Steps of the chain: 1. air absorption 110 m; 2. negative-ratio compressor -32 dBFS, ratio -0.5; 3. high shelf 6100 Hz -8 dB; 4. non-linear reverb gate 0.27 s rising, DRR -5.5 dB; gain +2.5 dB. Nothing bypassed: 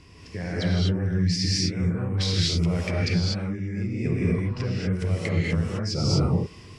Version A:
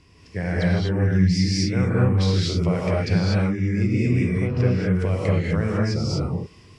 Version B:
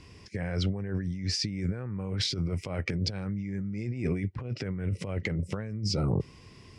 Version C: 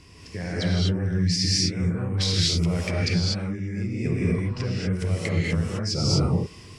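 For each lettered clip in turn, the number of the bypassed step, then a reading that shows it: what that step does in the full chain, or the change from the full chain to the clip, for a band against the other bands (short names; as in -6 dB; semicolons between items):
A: 2, 4 kHz band -7.0 dB; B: 4, crest factor change +3.5 dB; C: 3, 8 kHz band +4.0 dB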